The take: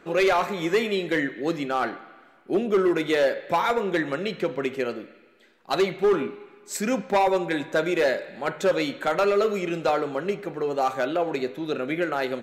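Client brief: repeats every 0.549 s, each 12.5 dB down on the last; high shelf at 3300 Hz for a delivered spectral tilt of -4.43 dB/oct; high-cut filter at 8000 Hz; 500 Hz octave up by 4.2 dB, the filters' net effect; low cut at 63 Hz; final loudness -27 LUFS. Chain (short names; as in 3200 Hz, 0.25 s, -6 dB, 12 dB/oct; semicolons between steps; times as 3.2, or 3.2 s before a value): HPF 63 Hz; LPF 8000 Hz; bell 500 Hz +5.5 dB; high shelf 3300 Hz -8.5 dB; feedback echo 0.549 s, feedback 24%, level -12.5 dB; gain -5 dB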